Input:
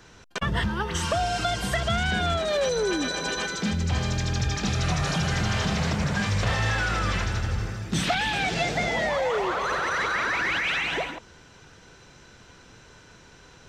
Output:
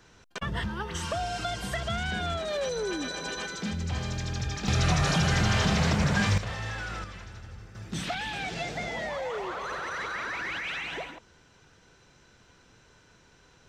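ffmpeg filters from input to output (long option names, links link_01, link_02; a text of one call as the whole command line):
ffmpeg -i in.wav -af "asetnsamples=nb_out_samples=441:pad=0,asendcmd='4.68 volume volume 1dB;6.38 volume volume -10dB;7.04 volume volume -17dB;7.75 volume volume -8dB',volume=-6dB" out.wav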